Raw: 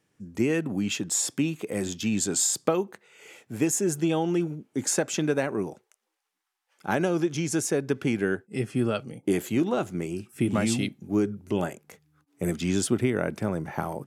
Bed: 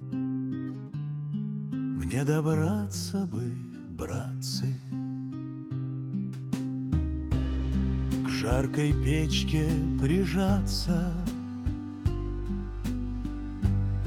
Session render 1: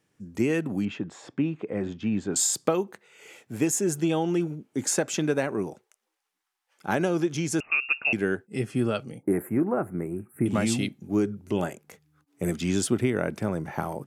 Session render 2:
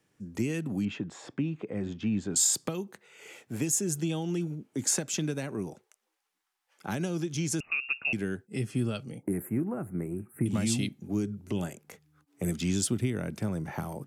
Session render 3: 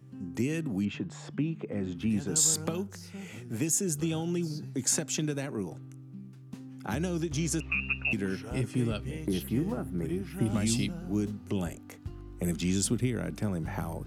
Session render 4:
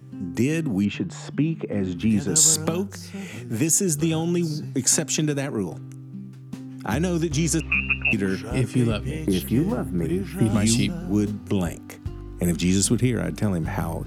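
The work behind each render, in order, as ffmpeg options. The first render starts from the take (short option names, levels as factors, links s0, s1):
-filter_complex "[0:a]asettb=1/sr,asplit=3[s0][s1][s2];[s0]atrim=end=0.854[s3];[s1]atrim=start=0.85:end=2.36,asetpts=PTS-STARTPTS,afade=t=in:d=0.004:c=qsin,afade=t=out:st=1.506:d=0.004:c=qsin,lowpass=1800[s4];[s2]atrim=start=2.356[s5];[s3][s4]acrossfade=d=0.004:c1=hsin:c2=qsin[s6];[s6][s5]acrossfade=d=0.004:c1=qsin:c2=hsin,asettb=1/sr,asplit=3[s7][s8][s9];[s7]atrim=end=7.604[s10];[s8]atrim=start=7.6:end=8.13,asetpts=PTS-STARTPTS,afade=t=in:d=0.004:c=qsin,afade=t=out:st=0.526:d=0.004:c=qsin,lowpass=f=2500:t=q:w=0.5098,lowpass=f=2500:t=q:w=0.6013,lowpass=f=2500:t=q:w=0.9,lowpass=f=2500:t=q:w=2.563,afreqshift=-2900[s11];[s9]atrim=start=8.126[s12];[s10][s11]acrossfade=d=0.004:c1=hsin:c2=qsin[s13];[s13][s12]acrossfade=d=0.004:c1=qsin:c2=hsin,asettb=1/sr,asplit=3[s14][s15][s16];[s14]atrim=end=9.234[s17];[s15]atrim=start=9.23:end=10.46,asetpts=PTS-STARTPTS,afade=t=in:d=0.004:c=qsin,afade=t=out:st=1.226:d=0.004:c=qsin,asuperstop=centerf=4500:order=8:qfactor=0.59[s18];[s16]atrim=start=10.456[s19];[s17][s18]acrossfade=d=0.004:c1=hsin:c2=qsin[s20];[s20][s19]acrossfade=d=0.004:c1=qsin:c2=hsin"
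-filter_complex "[0:a]acrossover=split=230|3000[s0][s1][s2];[s1]acompressor=threshold=0.0158:ratio=6[s3];[s0][s3][s2]amix=inputs=3:normalize=0"
-filter_complex "[1:a]volume=0.224[s0];[0:a][s0]amix=inputs=2:normalize=0"
-af "volume=2.51"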